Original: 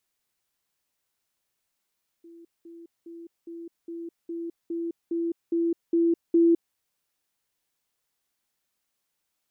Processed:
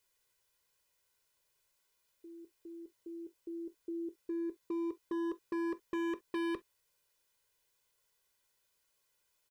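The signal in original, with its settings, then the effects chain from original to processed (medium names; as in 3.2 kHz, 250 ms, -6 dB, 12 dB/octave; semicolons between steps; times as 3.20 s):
level ladder 336 Hz -45.5 dBFS, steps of 3 dB, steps 11, 0.21 s 0.20 s
comb 2 ms, depth 66%; hard clipper -32.5 dBFS; gated-style reverb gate 80 ms falling, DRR 11.5 dB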